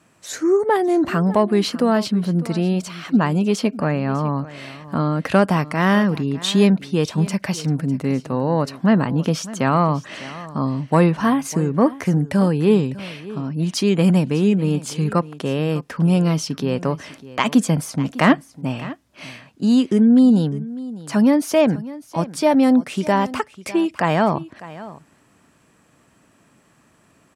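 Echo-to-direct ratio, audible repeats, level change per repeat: -17.5 dB, 1, no steady repeat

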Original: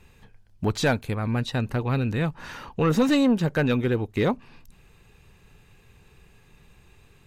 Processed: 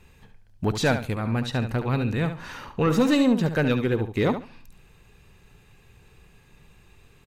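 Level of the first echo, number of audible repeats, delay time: -9.5 dB, 2, 71 ms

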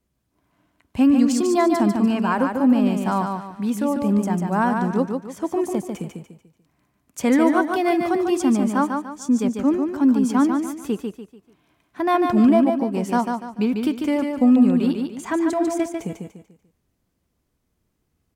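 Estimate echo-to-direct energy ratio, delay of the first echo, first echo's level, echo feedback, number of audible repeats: -4.5 dB, 0.146 s, -5.0 dB, 35%, 4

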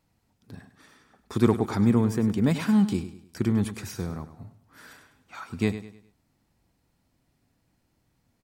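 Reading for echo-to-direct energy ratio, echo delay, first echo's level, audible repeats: -12.0 dB, 0.102 s, -12.5 dB, 3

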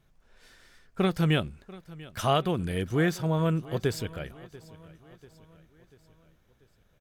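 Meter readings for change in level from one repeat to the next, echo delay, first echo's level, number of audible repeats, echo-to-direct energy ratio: -6.0 dB, 0.69 s, -20.0 dB, 3, -18.5 dB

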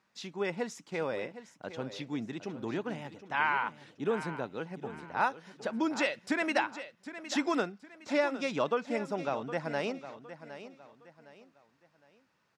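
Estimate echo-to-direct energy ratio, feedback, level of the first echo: -12.5 dB, 34%, -13.0 dB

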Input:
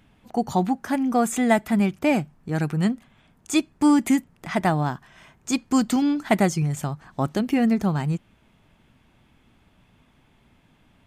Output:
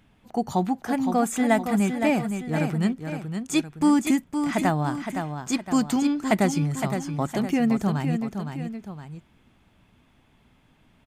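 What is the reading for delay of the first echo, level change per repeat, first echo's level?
0.514 s, -6.0 dB, -7.0 dB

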